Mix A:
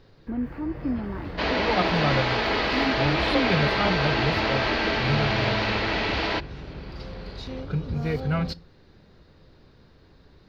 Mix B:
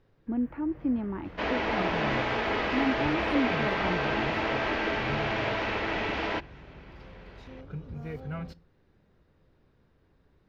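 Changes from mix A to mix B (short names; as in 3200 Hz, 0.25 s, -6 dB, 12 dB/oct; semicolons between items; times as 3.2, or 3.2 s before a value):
first sound -11.0 dB; second sound -3.5 dB; master: add bell 4400 Hz -11.5 dB 0.61 oct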